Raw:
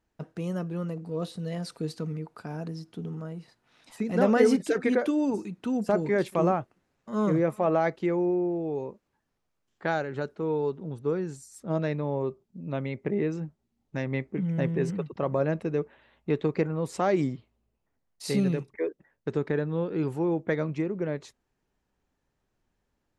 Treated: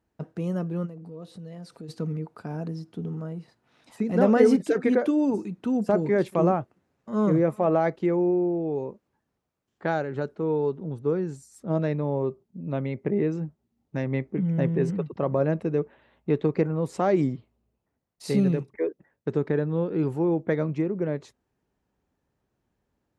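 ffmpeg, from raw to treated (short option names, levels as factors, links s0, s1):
-filter_complex "[0:a]asplit=3[s0][s1][s2];[s0]afade=t=out:st=0.85:d=0.02[s3];[s1]acompressor=threshold=0.00562:ratio=2.5:attack=3.2:release=140:knee=1:detection=peak,afade=t=in:st=0.85:d=0.02,afade=t=out:st=1.88:d=0.02[s4];[s2]afade=t=in:st=1.88:d=0.02[s5];[s3][s4][s5]amix=inputs=3:normalize=0,highpass=56,tiltshelf=f=1200:g=3.5"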